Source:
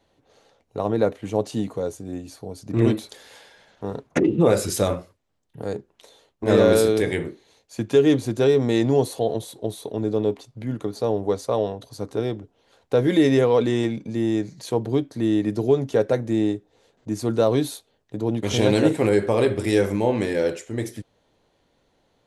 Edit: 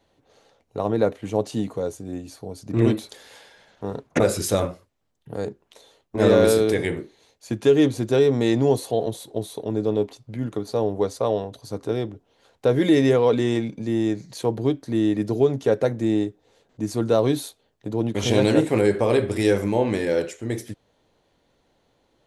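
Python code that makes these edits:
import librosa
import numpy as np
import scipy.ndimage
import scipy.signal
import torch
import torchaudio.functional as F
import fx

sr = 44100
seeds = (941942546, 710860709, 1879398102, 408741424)

y = fx.edit(x, sr, fx.cut(start_s=4.2, length_s=0.28), tone=tone)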